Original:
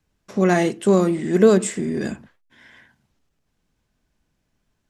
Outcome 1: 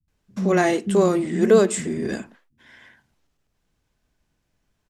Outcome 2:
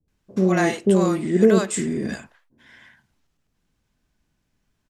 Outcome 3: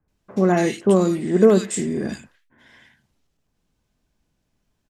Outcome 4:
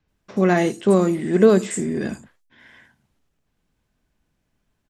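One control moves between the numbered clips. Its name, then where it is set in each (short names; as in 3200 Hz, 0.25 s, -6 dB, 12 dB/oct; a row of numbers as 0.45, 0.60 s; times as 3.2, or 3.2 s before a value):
bands offset in time, split: 210, 570, 1700, 5600 Hz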